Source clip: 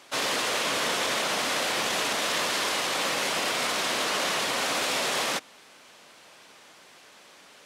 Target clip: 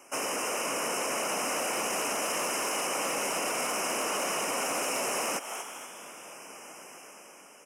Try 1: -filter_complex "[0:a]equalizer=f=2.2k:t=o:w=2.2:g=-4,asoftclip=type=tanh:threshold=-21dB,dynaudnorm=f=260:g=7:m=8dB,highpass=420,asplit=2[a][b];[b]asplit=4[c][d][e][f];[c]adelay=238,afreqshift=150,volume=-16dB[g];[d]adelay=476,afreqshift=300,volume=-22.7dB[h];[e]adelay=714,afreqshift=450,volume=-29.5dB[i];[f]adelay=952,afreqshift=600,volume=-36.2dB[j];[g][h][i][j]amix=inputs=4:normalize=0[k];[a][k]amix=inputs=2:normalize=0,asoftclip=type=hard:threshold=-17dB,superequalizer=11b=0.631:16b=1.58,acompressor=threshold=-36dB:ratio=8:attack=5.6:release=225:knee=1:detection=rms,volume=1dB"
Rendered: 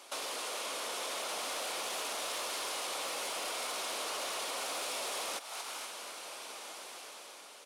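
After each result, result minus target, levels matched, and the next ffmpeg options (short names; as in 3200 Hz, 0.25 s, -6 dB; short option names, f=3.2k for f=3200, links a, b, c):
compressor: peak gain reduction +7 dB; 250 Hz band -6.5 dB; 4000 Hz band +5.5 dB
-filter_complex "[0:a]equalizer=f=2.2k:t=o:w=2.2:g=-4,asoftclip=type=tanh:threshold=-21dB,dynaudnorm=f=260:g=7:m=8dB,highpass=420,asplit=2[a][b];[b]asplit=4[c][d][e][f];[c]adelay=238,afreqshift=150,volume=-16dB[g];[d]adelay=476,afreqshift=300,volume=-22.7dB[h];[e]adelay=714,afreqshift=450,volume=-29.5dB[i];[f]adelay=952,afreqshift=600,volume=-36.2dB[j];[g][h][i][j]amix=inputs=4:normalize=0[k];[a][k]amix=inputs=2:normalize=0,asoftclip=type=hard:threshold=-17dB,superequalizer=11b=0.631:16b=1.58,acompressor=threshold=-28dB:ratio=8:attack=5.6:release=225:knee=1:detection=rms,volume=1dB"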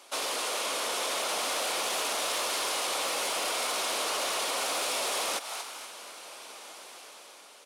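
250 Hz band -7.5 dB; 4000 Hz band +5.0 dB
-filter_complex "[0:a]equalizer=f=2.2k:t=o:w=2.2:g=-4,asoftclip=type=tanh:threshold=-21dB,dynaudnorm=f=260:g=7:m=8dB,highpass=190,asplit=2[a][b];[b]asplit=4[c][d][e][f];[c]adelay=238,afreqshift=150,volume=-16dB[g];[d]adelay=476,afreqshift=300,volume=-22.7dB[h];[e]adelay=714,afreqshift=450,volume=-29.5dB[i];[f]adelay=952,afreqshift=600,volume=-36.2dB[j];[g][h][i][j]amix=inputs=4:normalize=0[k];[a][k]amix=inputs=2:normalize=0,asoftclip=type=hard:threshold=-17dB,superequalizer=11b=0.631:16b=1.58,acompressor=threshold=-28dB:ratio=8:attack=5.6:release=225:knee=1:detection=rms,volume=1dB"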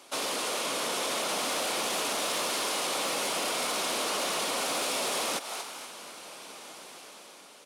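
4000 Hz band +4.5 dB
-filter_complex "[0:a]asuperstop=centerf=3900:order=20:qfactor=2,equalizer=f=2.2k:t=o:w=2.2:g=-4,asoftclip=type=tanh:threshold=-21dB,dynaudnorm=f=260:g=7:m=8dB,highpass=190,asplit=2[a][b];[b]asplit=4[c][d][e][f];[c]adelay=238,afreqshift=150,volume=-16dB[g];[d]adelay=476,afreqshift=300,volume=-22.7dB[h];[e]adelay=714,afreqshift=450,volume=-29.5dB[i];[f]adelay=952,afreqshift=600,volume=-36.2dB[j];[g][h][i][j]amix=inputs=4:normalize=0[k];[a][k]amix=inputs=2:normalize=0,asoftclip=type=hard:threshold=-17dB,superequalizer=11b=0.631:16b=1.58,acompressor=threshold=-28dB:ratio=8:attack=5.6:release=225:knee=1:detection=rms,volume=1dB"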